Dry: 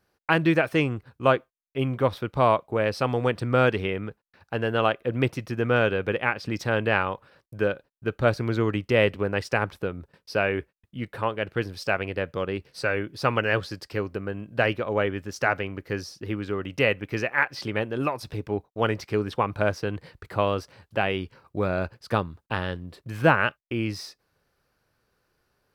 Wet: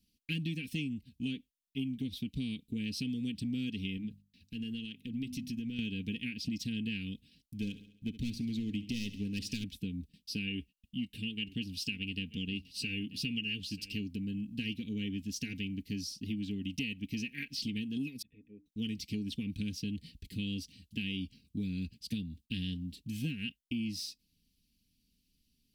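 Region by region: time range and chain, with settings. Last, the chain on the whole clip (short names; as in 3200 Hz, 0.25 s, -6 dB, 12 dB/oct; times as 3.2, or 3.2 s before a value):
3.97–5.79 notches 50/100/150/200/250 Hz + compressor 2.5:1, threshold -33 dBFS
7.55–9.64 hard clip -16.5 dBFS + feedback echo 68 ms, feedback 52%, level -16.5 dB
10.47–14.05 bell 2800 Hz +10 dB 0.22 oct + echo 0.936 s -19.5 dB
18.22–18.66 vocal tract filter e + low shelf 150 Hz -6.5 dB + notches 60/120/180/240/300/360 Hz
whole clip: elliptic band-stop 270–2900 Hz, stop band 50 dB; comb 4.3 ms, depth 60%; compressor, threshold -33 dBFS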